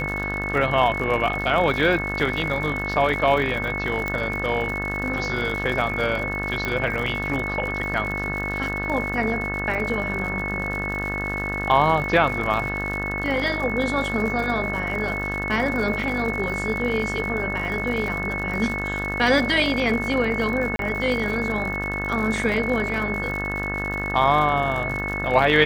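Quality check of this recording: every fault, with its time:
mains buzz 50 Hz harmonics 36 −30 dBFS
surface crackle 93 per second −29 dBFS
whistle 2,200 Hz −27 dBFS
0:04.08: click −13 dBFS
0:06.65: click −12 dBFS
0:20.76–0:20.79: drop-out 32 ms

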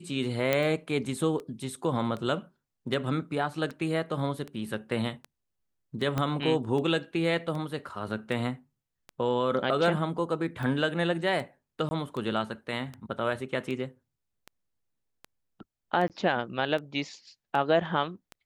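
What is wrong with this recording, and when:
scratch tick 78 rpm
0:00.53: click −11 dBFS
0:06.18: click −15 dBFS
0:11.89–0:11.91: drop-out 20 ms
0:16.08–0:16.10: drop-out 18 ms

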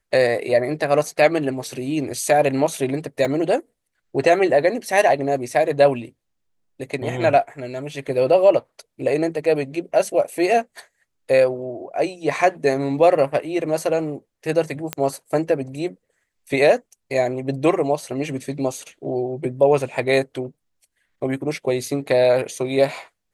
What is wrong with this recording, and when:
0:03.25: drop-out 2.9 ms
0:14.93: click −7 dBFS

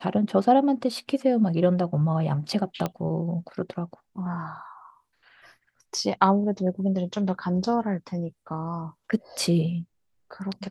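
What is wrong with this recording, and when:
0:02.86: click −14 dBFS

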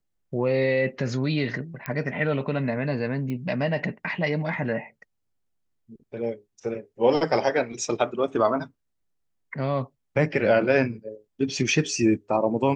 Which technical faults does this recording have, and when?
0:01.86: click −15 dBFS
0:03.30: click −21 dBFS

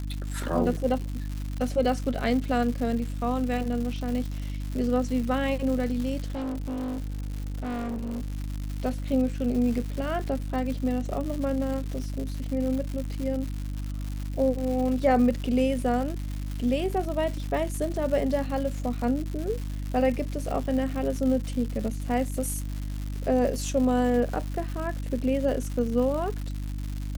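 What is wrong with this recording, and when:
surface crackle 220 per second −32 dBFS
mains hum 50 Hz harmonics 6 −32 dBFS
0:06.26–0:08.33: clipping −28.5 dBFS

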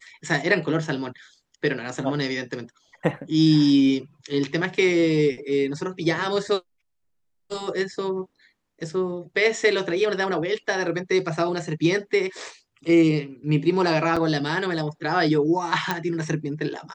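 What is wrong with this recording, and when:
0:14.16–0:14.17: drop-out 5.7 ms
0:15.91: click

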